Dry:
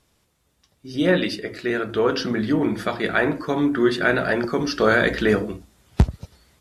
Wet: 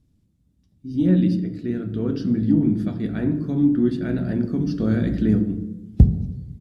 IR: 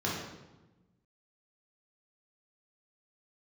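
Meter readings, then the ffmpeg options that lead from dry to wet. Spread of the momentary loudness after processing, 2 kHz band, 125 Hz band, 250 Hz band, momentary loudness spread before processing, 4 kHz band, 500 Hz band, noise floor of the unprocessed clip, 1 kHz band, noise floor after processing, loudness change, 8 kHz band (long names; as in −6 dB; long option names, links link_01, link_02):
10 LU, −19.0 dB, +6.5 dB, +3.5 dB, 8 LU, below −15 dB, −9.0 dB, −67 dBFS, below −15 dB, −64 dBFS, 0.0 dB, below −15 dB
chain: -filter_complex "[0:a]firequalizer=gain_entry='entry(270,0);entry(410,-17);entry(1000,-26);entry(3900,-21)':delay=0.05:min_phase=1,acontrast=35,asplit=2[link_01][link_02];[1:a]atrim=start_sample=2205,adelay=13[link_03];[link_02][link_03]afir=irnorm=-1:irlink=0,volume=-18dB[link_04];[link_01][link_04]amix=inputs=2:normalize=0"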